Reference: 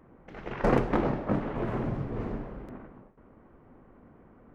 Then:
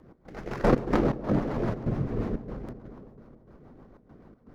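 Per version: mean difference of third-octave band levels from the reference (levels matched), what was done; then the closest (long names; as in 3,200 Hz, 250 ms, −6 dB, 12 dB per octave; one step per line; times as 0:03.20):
3.0 dB: running median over 15 samples
rotating-speaker cabinet horn 7 Hz
gate pattern "x.xxxx.xx.xxx" 121 BPM −12 dB
on a send: bucket-brigade delay 144 ms, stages 1,024, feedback 79%, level −18.5 dB
on the sum: level +5 dB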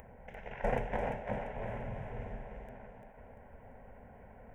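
6.0 dB: parametric band 150 Hz −8 dB 0.48 octaves
upward compression, threshold −34 dBFS
phaser with its sweep stopped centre 1,200 Hz, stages 6
feedback echo with a high-pass in the loop 343 ms, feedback 40%, level −5 dB
level −4.5 dB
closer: first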